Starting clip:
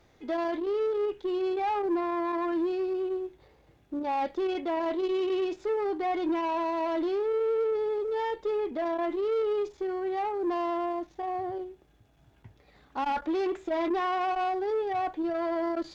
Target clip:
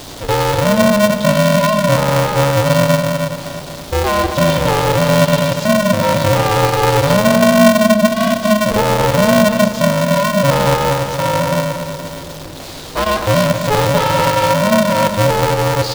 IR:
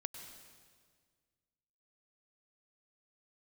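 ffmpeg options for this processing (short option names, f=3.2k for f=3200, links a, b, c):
-filter_complex "[0:a]aeval=exprs='val(0)+0.5*0.00631*sgn(val(0))':c=same,alimiter=level_in=1.5dB:limit=-24dB:level=0:latency=1,volume=-1.5dB,highshelf=f=2.7k:t=q:w=1.5:g=12.5,bandreject=f=60:t=h:w=6,bandreject=f=120:t=h:w=6,bandreject=f=180:t=h:w=6,bandreject=f=240:t=h:w=6,bandreject=f=300:t=h:w=6,bandreject=f=360:t=h:w=6,bandreject=f=420:t=h:w=6,aecho=1:1:237|474|711|948|1185|1422|1659:0.422|0.228|0.123|0.0664|0.0359|0.0194|0.0105,asplit=2[a][b];[1:a]atrim=start_sample=2205,asetrate=70560,aresample=44100[c];[b][c]afir=irnorm=-1:irlink=0,volume=1.5dB[d];[a][d]amix=inputs=2:normalize=0,aeval=exprs='val(0)+0.00562*(sin(2*PI*60*n/s)+sin(2*PI*2*60*n/s)/2+sin(2*PI*3*60*n/s)/3+sin(2*PI*4*60*n/s)/4+sin(2*PI*5*60*n/s)/5)':c=same,equalizer=f=400:w=0.31:g=11.5,aeval=exprs='val(0)*sgn(sin(2*PI*210*n/s))':c=same,volume=2.5dB"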